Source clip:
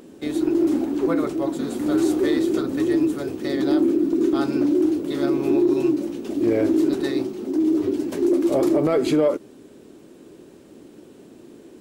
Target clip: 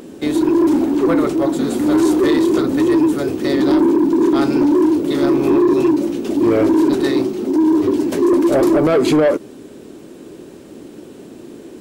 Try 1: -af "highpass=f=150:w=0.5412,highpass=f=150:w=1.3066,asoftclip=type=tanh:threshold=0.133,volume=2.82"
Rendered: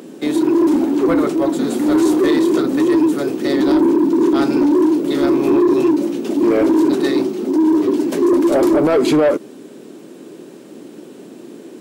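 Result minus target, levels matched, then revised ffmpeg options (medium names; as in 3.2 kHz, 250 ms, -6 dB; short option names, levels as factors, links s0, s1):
125 Hz band -3.5 dB
-af "asoftclip=type=tanh:threshold=0.133,volume=2.82"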